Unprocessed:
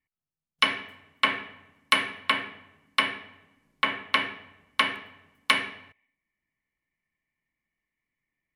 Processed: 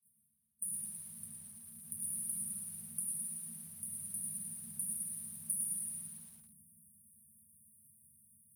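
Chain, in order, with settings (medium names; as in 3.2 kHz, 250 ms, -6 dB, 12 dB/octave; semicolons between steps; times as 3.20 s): spectral levelling over time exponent 0.4; high-order bell 3.2 kHz -14 dB; gate -49 dBFS, range -27 dB; bass shelf 410 Hz -8.5 dB; multi-head delay 61 ms, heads second and third, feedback 42%, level -9.5 dB; 0.79–2.00 s: compression 10:1, threshold -33 dBFS, peak gain reduction 14 dB; frequency shift +71 Hz; reverberation RT60 2.2 s, pre-delay 5 ms, DRR -4 dB; FFT band-reject 230–8400 Hz; bit-crushed delay 112 ms, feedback 55%, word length 9-bit, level -9 dB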